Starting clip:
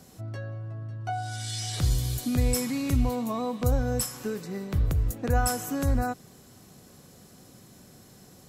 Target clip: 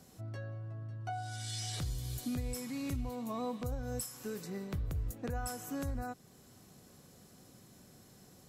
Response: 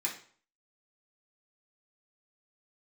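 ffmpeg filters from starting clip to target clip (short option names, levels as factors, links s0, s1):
-filter_complex "[0:a]asettb=1/sr,asplit=3[s0][s1][s2];[s0]atrim=end=3.834[s3];[s1]atrim=start=3.83:end=4.5,asetpts=PTS-STARTPTS,afade=t=in:d=0.004:c=qsin,afade=t=out:st=0.666:d=0.004:c=qsin,highshelf=f=5100:g=7[s4];[s2]atrim=start=4.496[s5];[s3][s4]acrossfade=d=0.004:c1=hsin:c2=qsin[s6];[s6][s5]acrossfade=d=0.004:c1=qsin:c2=hsin,alimiter=limit=0.0794:level=0:latency=1:release=448,volume=0.473"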